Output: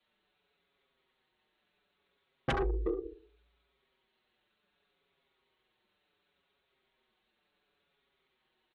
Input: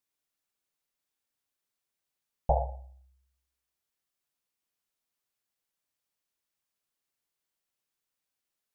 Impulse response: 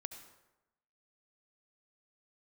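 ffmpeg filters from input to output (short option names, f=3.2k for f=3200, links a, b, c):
-filter_complex "[0:a]equalizer=f=710:w=3.1:g=7.5,aecho=1:1:3:0.34,adynamicequalizer=threshold=0.00251:dfrequency=190:dqfactor=4.6:tfrequency=190:tqfactor=4.6:attack=5:release=100:ratio=0.375:range=2:mode=boostabove:tftype=bell,asplit=2[a][b];[b]adelay=360,highpass=300,lowpass=3.4k,asoftclip=type=hard:threshold=-15.5dB,volume=-13dB[c];[a][c]amix=inputs=2:normalize=0,aresample=16000,aeval=exprs='0.473*sin(PI/2*7.08*val(0)/0.473)':c=same,aresample=44100,afreqshift=34,asoftclip=type=tanh:threshold=-8dB,asetrate=24046,aresample=44100,atempo=1.83401,asplit=2[d][e];[1:a]atrim=start_sample=2205,atrim=end_sample=3528[f];[e][f]afir=irnorm=-1:irlink=0,volume=-9dB[g];[d][g]amix=inputs=2:normalize=0,acompressor=threshold=-19dB:ratio=10,asplit=2[h][i];[i]adelay=6.1,afreqshift=-0.69[j];[h][j]amix=inputs=2:normalize=1,volume=-7dB"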